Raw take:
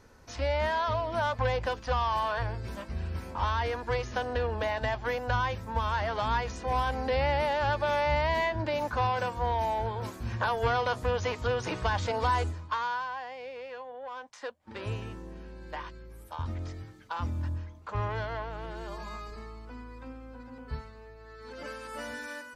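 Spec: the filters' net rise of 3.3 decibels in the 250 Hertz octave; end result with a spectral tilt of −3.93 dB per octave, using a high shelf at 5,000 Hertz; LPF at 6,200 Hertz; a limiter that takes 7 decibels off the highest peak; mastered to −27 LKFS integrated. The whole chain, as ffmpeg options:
ffmpeg -i in.wav -af "lowpass=6200,equalizer=frequency=250:width_type=o:gain=4,highshelf=frequency=5000:gain=8.5,volume=5.5dB,alimiter=limit=-15.5dB:level=0:latency=1" out.wav

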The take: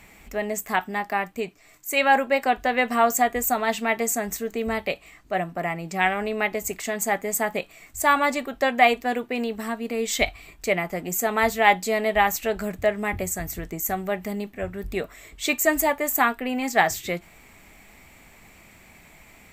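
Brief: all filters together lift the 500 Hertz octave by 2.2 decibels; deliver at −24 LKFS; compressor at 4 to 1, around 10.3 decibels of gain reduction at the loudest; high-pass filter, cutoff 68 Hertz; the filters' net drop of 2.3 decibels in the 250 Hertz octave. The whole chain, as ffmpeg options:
ffmpeg -i in.wav -af "highpass=68,equalizer=frequency=250:width_type=o:gain=-3.5,equalizer=frequency=500:width_type=o:gain=3.5,acompressor=threshold=-23dB:ratio=4,volume=4dB" out.wav

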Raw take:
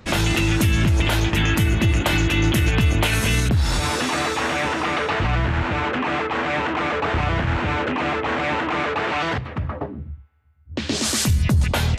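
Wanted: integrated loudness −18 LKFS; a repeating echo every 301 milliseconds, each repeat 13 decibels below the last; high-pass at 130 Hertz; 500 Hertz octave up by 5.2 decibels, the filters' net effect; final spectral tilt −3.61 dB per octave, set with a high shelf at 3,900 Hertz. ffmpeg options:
ffmpeg -i in.wav -af "highpass=130,equalizer=frequency=500:width_type=o:gain=6.5,highshelf=frequency=3900:gain=6.5,aecho=1:1:301|602|903:0.224|0.0493|0.0108,volume=1.5dB" out.wav

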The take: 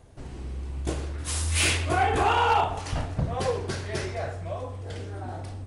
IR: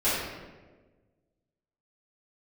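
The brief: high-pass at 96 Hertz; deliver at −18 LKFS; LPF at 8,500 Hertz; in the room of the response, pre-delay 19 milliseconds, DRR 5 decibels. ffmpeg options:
-filter_complex "[0:a]highpass=96,lowpass=8500,asplit=2[link_01][link_02];[1:a]atrim=start_sample=2205,adelay=19[link_03];[link_02][link_03]afir=irnorm=-1:irlink=0,volume=-18.5dB[link_04];[link_01][link_04]amix=inputs=2:normalize=0,volume=8.5dB"

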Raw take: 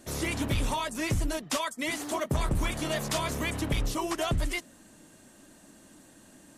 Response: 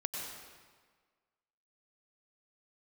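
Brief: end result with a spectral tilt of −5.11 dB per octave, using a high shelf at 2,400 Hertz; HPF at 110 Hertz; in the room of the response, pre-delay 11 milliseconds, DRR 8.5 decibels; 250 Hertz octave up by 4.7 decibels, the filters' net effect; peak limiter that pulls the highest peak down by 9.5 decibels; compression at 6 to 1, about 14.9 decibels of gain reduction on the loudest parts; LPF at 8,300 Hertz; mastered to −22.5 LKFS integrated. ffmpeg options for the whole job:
-filter_complex "[0:a]highpass=110,lowpass=8300,equalizer=frequency=250:width_type=o:gain=6.5,highshelf=frequency=2400:gain=-5.5,acompressor=threshold=-40dB:ratio=6,alimiter=level_in=14.5dB:limit=-24dB:level=0:latency=1,volume=-14.5dB,asplit=2[link_01][link_02];[1:a]atrim=start_sample=2205,adelay=11[link_03];[link_02][link_03]afir=irnorm=-1:irlink=0,volume=-10.5dB[link_04];[link_01][link_04]amix=inputs=2:normalize=0,volume=24.5dB"

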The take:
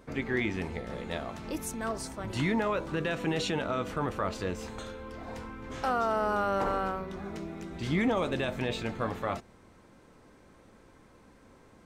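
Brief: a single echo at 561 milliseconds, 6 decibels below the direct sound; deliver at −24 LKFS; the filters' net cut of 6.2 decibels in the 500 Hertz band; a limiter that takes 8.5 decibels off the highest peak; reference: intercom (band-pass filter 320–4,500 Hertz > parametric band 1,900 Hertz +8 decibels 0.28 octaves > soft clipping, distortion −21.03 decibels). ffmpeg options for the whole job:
ffmpeg -i in.wav -af "equalizer=frequency=500:width_type=o:gain=-7,alimiter=level_in=3dB:limit=-24dB:level=0:latency=1,volume=-3dB,highpass=320,lowpass=4500,equalizer=frequency=1900:width_type=o:width=0.28:gain=8,aecho=1:1:561:0.501,asoftclip=threshold=-26.5dB,volume=15dB" out.wav

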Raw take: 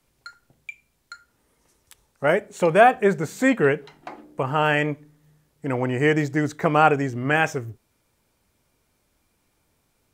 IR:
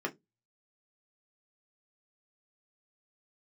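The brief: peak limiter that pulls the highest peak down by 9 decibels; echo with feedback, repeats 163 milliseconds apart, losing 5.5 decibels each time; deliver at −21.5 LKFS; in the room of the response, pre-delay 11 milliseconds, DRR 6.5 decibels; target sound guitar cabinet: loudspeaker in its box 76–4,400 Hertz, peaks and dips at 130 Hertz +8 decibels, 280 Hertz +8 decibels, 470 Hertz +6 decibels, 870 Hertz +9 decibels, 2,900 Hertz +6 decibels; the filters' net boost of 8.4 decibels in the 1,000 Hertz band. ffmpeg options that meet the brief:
-filter_complex "[0:a]equalizer=frequency=1000:width_type=o:gain=5.5,alimiter=limit=-8dB:level=0:latency=1,aecho=1:1:163|326|489|652|815|978|1141:0.531|0.281|0.149|0.079|0.0419|0.0222|0.0118,asplit=2[link_01][link_02];[1:a]atrim=start_sample=2205,adelay=11[link_03];[link_02][link_03]afir=irnorm=-1:irlink=0,volume=-11.5dB[link_04];[link_01][link_04]amix=inputs=2:normalize=0,highpass=76,equalizer=frequency=130:width_type=q:width=4:gain=8,equalizer=frequency=280:width_type=q:width=4:gain=8,equalizer=frequency=470:width_type=q:width=4:gain=6,equalizer=frequency=870:width_type=q:width=4:gain=9,equalizer=frequency=2900:width_type=q:width=4:gain=6,lowpass=frequency=4400:width=0.5412,lowpass=frequency=4400:width=1.3066,volume=-6dB"

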